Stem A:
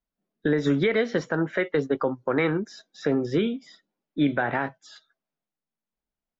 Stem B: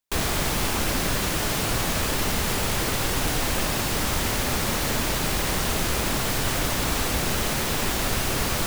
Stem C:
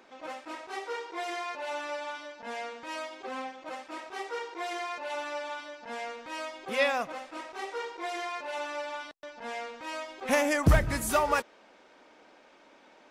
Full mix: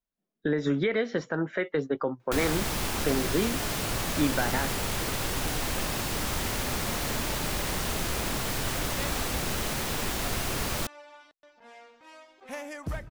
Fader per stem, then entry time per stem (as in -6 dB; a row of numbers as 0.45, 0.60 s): -4.0, -5.5, -13.0 dB; 0.00, 2.20, 2.20 s